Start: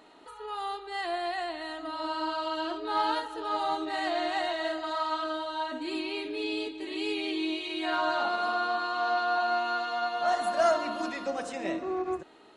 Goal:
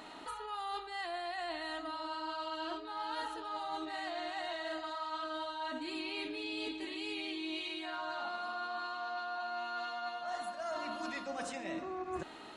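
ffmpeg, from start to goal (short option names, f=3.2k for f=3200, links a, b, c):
-af "equalizer=f=430:w=1.6:g=-7,areverse,acompressor=threshold=-44dB:ratio=16,areverse,volume=7.5dB"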